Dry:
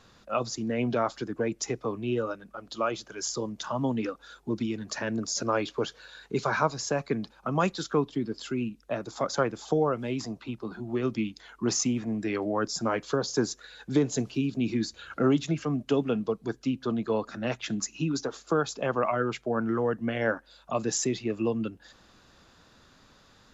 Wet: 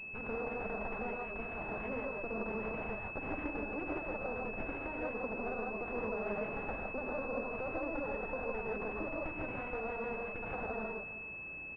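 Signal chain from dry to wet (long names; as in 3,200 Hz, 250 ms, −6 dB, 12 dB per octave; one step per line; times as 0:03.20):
lower of the sound and its delayed copy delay 0.88 ms
downward compressor 6 to 1, threshold −40 dBFS, peak gain reduction 18 dB
single-tap delay 646 ms −15.5 dB
reverb whose tail is shaped and stops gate 360 ms rising, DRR −3 dB
wrong playback speed 7.5 ips tape played at 15 ips
switching amplifier with a slow clock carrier 2,600 Hz
level +1.5 dB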